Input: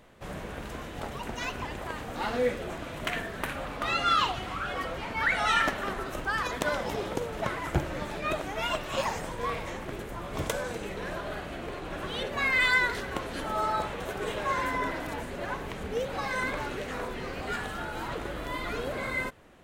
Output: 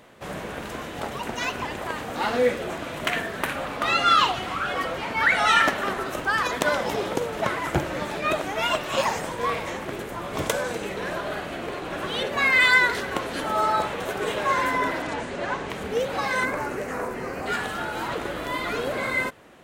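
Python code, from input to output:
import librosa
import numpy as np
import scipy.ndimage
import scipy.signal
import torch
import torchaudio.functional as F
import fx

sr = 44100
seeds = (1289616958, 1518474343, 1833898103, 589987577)

y = fx.lowpass(x, sr, hz=8300.0, slope=24, at=(15.02, 15.7))
y = fx.peak_eq(y, sr, hz=3500.0, db=-14.5, octaves=0.76, at=(16.45, 17.46))
y = fx.highpass(y, sr, hz=170.0, slope=6)
y = y * librosa.db_to_amplitude(6.5)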